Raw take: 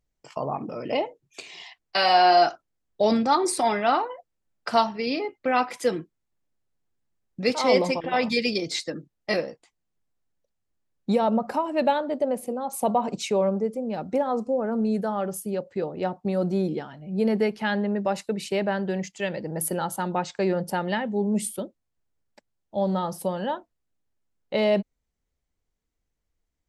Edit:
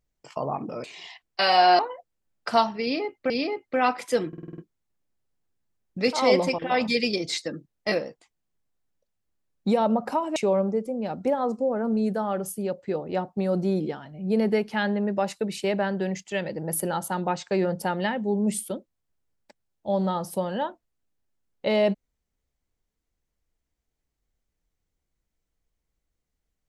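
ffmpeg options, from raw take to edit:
-filter_complex "[0:a]asplit=11[s0][s1][s2][s3][s4][s5][s6][s7][s8][s9][s10];[s0]atrim=end=0.842[s11];[s1]atrim=start=1.398:end=2.352[s12];[s2]atrim=start=3.988:end=5.502[s13];[s3]atrim=start=5.018:end=6.052[s14];[s4]atrim=start=5.998:end=6.052[s15];[s5]atrim=start=5.998:end=6.052[s16];[s6]atrim=start=5.998:end=6.052[s17];[s7]atrim=start=5.998:end=6.052[s18];[s8]atrim=start=5.998:end=6.052[s19];[s9]atrim=start=5.998:end=11.782[s20];[s10]atrim=start=13.238[s21];[s11][s12]acrossfade=d=0.004:c1=hsin:c2=hsin[s22];[s22][s13]acrossfade=d=0.004:c1=hsin:c2=hsin[s23];[s23][s14]acrossfade=d=0.004:c1=hsin:c2=hsin[s24];[s24][s15]acrossfade=d=0.004:c1=hsin:c2=hsin[s25];[s25][s16]acrossfade=d=0.004:c1=hsin:c2=hsin[s26];[s26][s17]acrossfade=d=0.004:c1=hsin:c2=hsin[s27];[s27][s18]acrossfade=d=0.004:c1=hsin:c2=hsin[s28];[s28][s19]acrossfade=d=0.004:c1=hsin:c2=hsin[s29];[s29][s20]acrossfade=d=0.004:c1=hsin:c2=hsin[s30];[s30][s21]acrossfade=d=0.004:c1=hsin:c2=hsin"

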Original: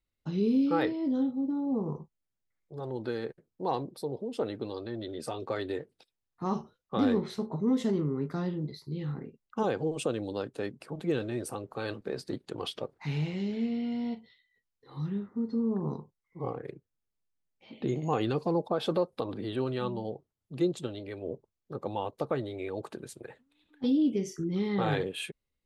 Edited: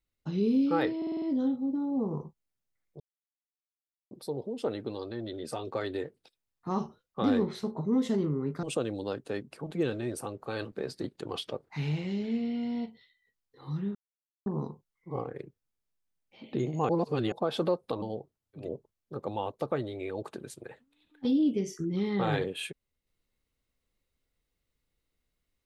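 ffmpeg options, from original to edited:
-filter_complex "[0:a]asplit=15[s0][s1][s2][s3][s4][s5][s6][s7][s8][s9][s10][s11][s12][s13][s14];[s0]atrim=end=1.022[s15];[s1]atrim=start=0.968:end=1.022[s16];[s2]atrim=start=0.968:end=1.022[s17];[s3]atrim=start=0.968:end=1.022[s18];[s4]atrim=start=0.968:end=1.022[s19];[s5]atrim=start=0.968:end=2.75,asetpts=PTS-STARTPTS,afade=t=out:st=1.778:d=0.004:c=hsin[s20];[s6]atrim=start=2.75:end=3.86,asetpts=PTS-STARTPTS,volume=0[s21];[s7]atrim=start=3.86:end=8.382,asetpts=PTS-STARTPTS,afade=t=in:d=0.004:c=hsin[s22];[s8]atrim=start=9.918:end=15.24,asetpts=PTS-STARTPTS,afade=t=out:st=5.318:d=0.004:c=hsin[s23];[s9]atrim=start=15.24:end=15.75,asetpts=PTS-STARTPTS,volume=0[s24];[s10]atrim=start=15.75:end=18.182,asetpts=PTS-STARTPTS,afade=t=in:d=0.004:c=hsin[s25];[s11]atrim=start=18.178:end=18.612,asetpts=PTS-STARTPTS,areverse[s26];[s12]atrim=start=18.608:end=19.312[s27];[s13]atrim=start=19.968:end=20.64[s28];[s14]atrim=start=21.12[s29];[s15][s16]acrossfade=d=0.004:c1=hsin:c2=hsin[s30];[s30][s17]acrossfade=d=0.004:c1=hsin:c2=hsin[s31];[s31][s18]acrossfade=d=0.004:c1=hsin:c2=hsin[s32];[s32][s19]acrossfade=d=0.004:c1=hsin:c2=hsin[s33];[s20][s21][s22]concat=n=3:v=0:a=1[s34];[s33][s34]acrossfade=d=0.004:c1=hsin:c2=hsin[s35];[s23][s24][s25]concat=n=3:v=0:a=1[s36];[s35][s36]acrossfade=d=0.004:c1=hsin:c2=hsin[s37];[s37][s26]acrossfade=d=0.004:c1=hsin:c2=hsin[s38];[s38][s27]acrossfade=d=0.004:c1=hsin:c2=hsin[s39];[s39][s28]acrossfade=d=0.004:c1=hsin:c2=hsin[s40];[s40][s29]acrossfade=d=0.16:c1=tri:c2=tri"

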